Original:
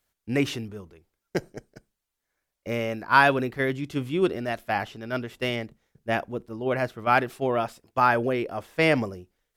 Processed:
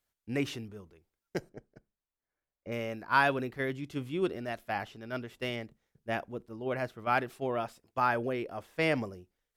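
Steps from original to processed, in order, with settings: 1.49–2.72 s: low-pass 1.5 kHz 6 dB/octave; trim -7.5 dB

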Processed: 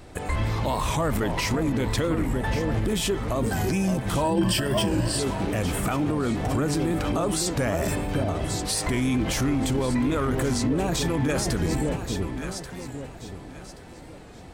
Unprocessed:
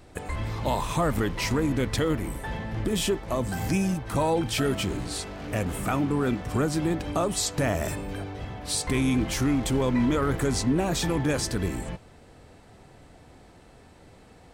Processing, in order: 2.00–2.44 s: treble shelf 6.6 kHz -11 dB; echo whose repeats swap between lows and highs 564 ms, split 850 Hz, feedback 53%, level -6.5 dB; peak limiter -22 dBFS, peak gain reduction 9.5 dB; 4.24–5.19 s: rippled EQ curve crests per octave 1.3, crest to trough 11 dB; warped record 45 rpm, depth 100 cents; trim +5.5 dB

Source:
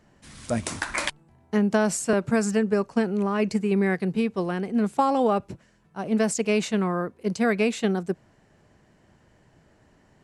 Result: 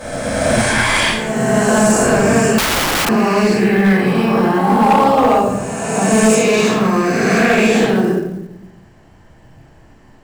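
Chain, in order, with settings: reverse spectral sustain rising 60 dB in 2.28 s; simulated room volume 230 m³, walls mixed, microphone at 5.5 m; 2.58–3.09 s: integer overflow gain 5 dB; short-mantissa float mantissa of 4-bit; trim -6.5 dB

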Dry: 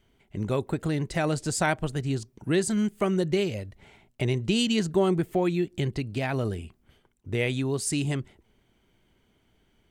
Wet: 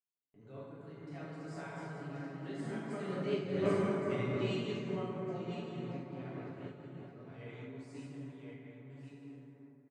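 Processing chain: backward echo that repeats 567 ms, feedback 44%, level -4.5 dB; Doppler pass-by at 3.72 s, 10 m/s, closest 2.1 m; high-pass 160 Hz 12 dB/octave; gate with hold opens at -59 dBFS; low-pass 6.1 kHz 12 dB/octave; treble shelf 3.7 kHz -7.5 dB; comb 7.1 ms; in parallel at +1 dB: compression, threshold -50 dBFS, peak gain reduction 22.5 dB; on the sum: plate-style reverb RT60 4 s, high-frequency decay 0.3×, DRR -9 dB; random flutter of the level, depth 65%; trim -8 dB

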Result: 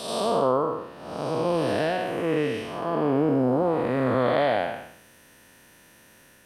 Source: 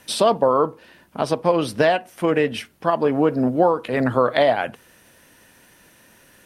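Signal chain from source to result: spectral blur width 318 ms

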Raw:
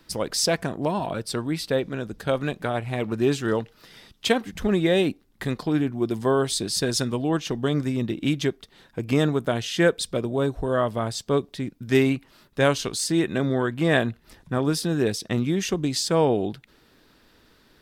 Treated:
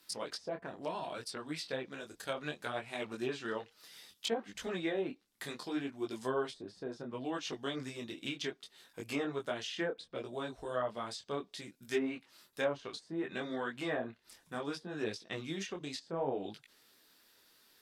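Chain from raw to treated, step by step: RIAA curve recording; low-pass that closes with the level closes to 830 Hz, closed at -16.5 dBFS; detune thickener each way 23 cents; trim -7 dB

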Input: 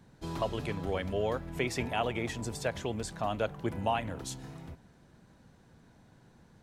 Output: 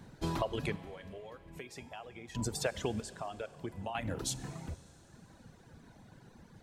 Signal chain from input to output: compression 6:1, threshold -35 dBFS, peak gain reduction 10 dB; 3.00–3.95 s: feedback comb 89 Hz, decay 1.7 s, mix 60%; reverb removal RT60 1.4 s; 0.76–2.35 s: feedback comb 820 Hz, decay 0.37 s, mix 80%; Schroeder reverb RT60 3.3 s, combs from 31 ms, DRR 15.5 dB; trim +6 dB

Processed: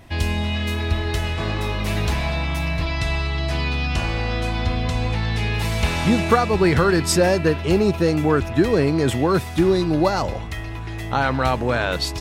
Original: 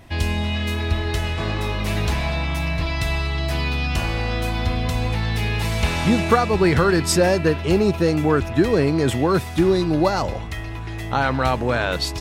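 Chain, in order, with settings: 2.85–5.54 s: low-pass 8.1 kHz 12 dB/octave

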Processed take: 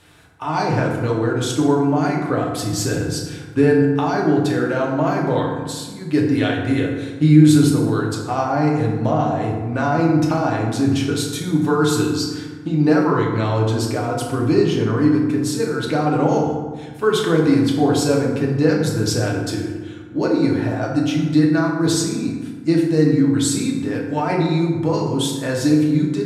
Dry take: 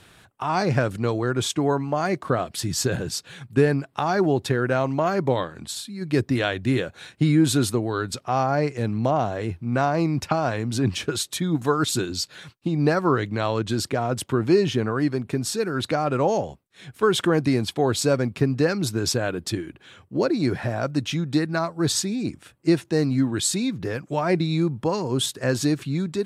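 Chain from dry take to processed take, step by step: FDN reverb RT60 1.4 s, low-frequency decay 1.3×, high-frequency decay 0.5×, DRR -2.5 dB; trim -2 dB

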